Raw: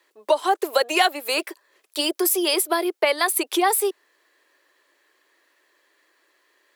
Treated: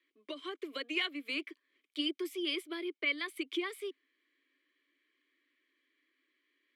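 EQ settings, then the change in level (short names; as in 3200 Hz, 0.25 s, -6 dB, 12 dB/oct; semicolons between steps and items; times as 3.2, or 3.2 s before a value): vowel filter i; bell 1100 Hz +13.5 dB 0.41 oct; 0.0 dB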